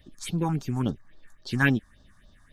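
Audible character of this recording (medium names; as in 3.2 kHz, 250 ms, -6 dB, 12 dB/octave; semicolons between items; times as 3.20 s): phasing stages 4, 3.6 Hz, lowest notch 440–2200 Hz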